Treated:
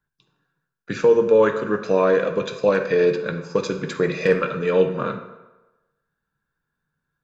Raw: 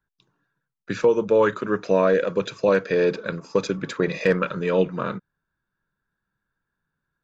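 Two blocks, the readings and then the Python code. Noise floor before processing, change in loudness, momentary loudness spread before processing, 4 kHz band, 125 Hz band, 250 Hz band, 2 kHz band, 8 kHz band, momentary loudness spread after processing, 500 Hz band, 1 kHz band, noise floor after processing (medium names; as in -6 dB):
-83 dBFS, +2.0 dB, 10 LU, +1.0 dB, +0.5 dB, +0.5 dB, +1.0 dB, no reading, 10 LU, +2.5 dB, +1.0 dB, -81 dBFS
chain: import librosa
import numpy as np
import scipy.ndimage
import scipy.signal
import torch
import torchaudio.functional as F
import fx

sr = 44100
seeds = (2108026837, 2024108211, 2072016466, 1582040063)

y = fx.rev_fdn(x, sr, rt60_s=1.1, lf_ratio=0.8, hf_ratio=0.7, size_ms=39.0, drr_db=5.0)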